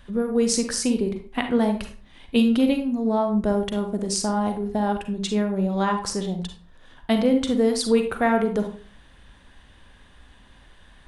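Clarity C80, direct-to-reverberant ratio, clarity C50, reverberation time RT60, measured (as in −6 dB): 13.0 dB, 5.5 dB, 8.0 dB, 0.40 s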